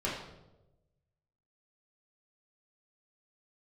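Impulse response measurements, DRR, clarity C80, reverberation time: -7.0 dB, 6.0 dB, 1.0 s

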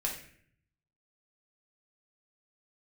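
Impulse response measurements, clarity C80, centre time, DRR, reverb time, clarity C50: 9.5 dB, 28 ms, -2.5 dB, 0.60 s, 6.0 dB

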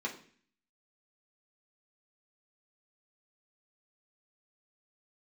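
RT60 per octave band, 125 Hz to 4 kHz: 0.65 s, 0.65 s, 0.50 s, 0.45 s, 0.55 s, 0.55 s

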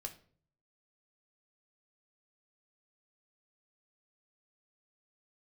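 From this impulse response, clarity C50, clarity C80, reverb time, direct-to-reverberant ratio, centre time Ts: 13.5 dB, 18.5 dB, 0.50 s, 4.0 dB, 9 ms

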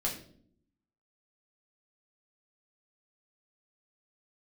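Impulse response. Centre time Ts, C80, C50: 24 ms, 12.0 dB, 8.0 dB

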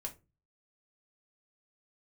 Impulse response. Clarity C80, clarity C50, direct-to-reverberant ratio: 23.0 dB, 16.0 dB, 0.5 dB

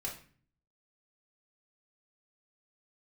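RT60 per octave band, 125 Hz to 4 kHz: 0.80 s, 0.70 s, 0.45 s, 0.40 s, 0.45 s, 0.35 s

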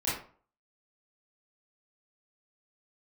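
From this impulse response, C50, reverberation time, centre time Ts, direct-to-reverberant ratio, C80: 2.5 dB, 0.45 s, 48 ms, -10.5 dB, 8.0 dB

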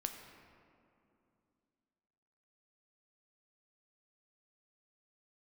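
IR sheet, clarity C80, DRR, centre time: 7.0 dB, 4.5 dB, 44 ms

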